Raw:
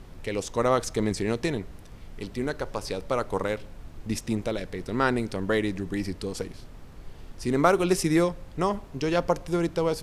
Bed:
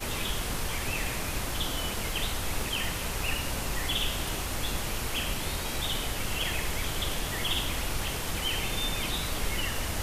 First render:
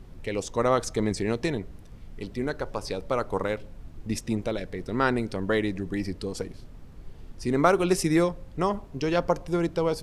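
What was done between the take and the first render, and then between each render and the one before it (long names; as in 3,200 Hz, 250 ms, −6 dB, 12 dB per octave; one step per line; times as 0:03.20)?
broadband denoise 6 dB, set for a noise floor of −46 dBFS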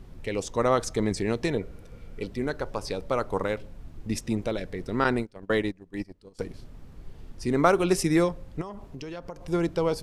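0:01.54–0:02.27: hollow resonant body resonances 490/1,400/2,300 Hz, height 10 dB, ringing for 25 ms
0:05.04–0:06.39: noise gate −28 dBFS, range −23 dB
0:08.61–0:09.48: downward compressor, threshold −35 dBFS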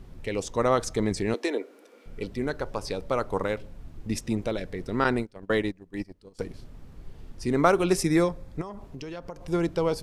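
0:01.34–0:02.06: Butterworth high-pass 260 Hz 48 dB per octave
0:07.97–0:08.82: notch filter 2,900 Hz, Q 7.3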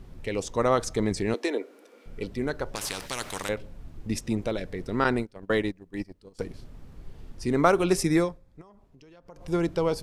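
0:02.75–0:03.49: every bin compressed towards the loudest bin 4 to 1
0:08.16–0:09.49: duck −15 dB, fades 0.24 s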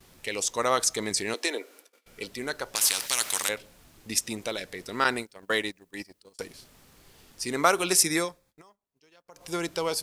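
noise gate −51 dBFS, range −23 dB
spectral tilt +4 dB per octave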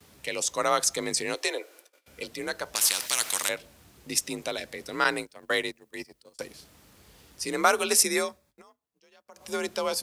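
frequency shifter +44 Hz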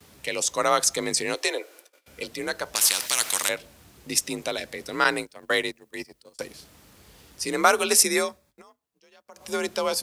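level +3 dB
brickwall limiter −2 dBFS, peak gain reduction 1 dB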